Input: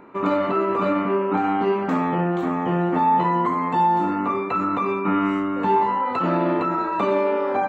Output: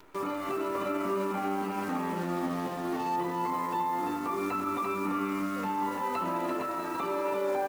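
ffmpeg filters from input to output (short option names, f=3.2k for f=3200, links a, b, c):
-filter_complex "[0:a]asettb=1/sr,asplit=3[a][b][c];[a]atrim=end=2.164[d];[b]atrim=start=2.16:end=3.16,asetpts=PTS-STARTPTS,afade=t=in:d=0.004:c=qsin,afade=t=out:st=0.996:d=0.004:c=qsin,adynamicsmooth=sensitivity=3:basefreq=1.1k[e];[c]atrim=start=3.156[f];[d][e]acrossfade=d=0.004:c1=hsin:c2=qsin[g];[g][f]acrossfade=d=0.004:c1=qsin:c2=hsin,highshelf=f=3.3k:g=7.5,acrusher=bits=7:dc=4:mix=0:aa=0.000001,alimiter=limit=-18.5dB:level=0:latency=1,asplit=2[h][i];[i]aecho=0:1:342:0.596[j];[h][j]amix=inputs=2:normalize=0,flanger=delay=2.1:depth=1.8:regen=-59:speed=0.27:shape=triangular,volume=-2.5dB"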